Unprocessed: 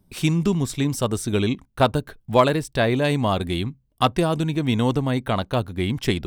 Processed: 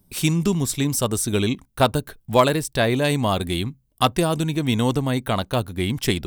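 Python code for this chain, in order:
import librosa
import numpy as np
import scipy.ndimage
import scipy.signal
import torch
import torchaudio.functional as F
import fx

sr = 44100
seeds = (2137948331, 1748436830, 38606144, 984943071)

y = fx.high_shelf(x, sr, hz=6300.0, db=12.0)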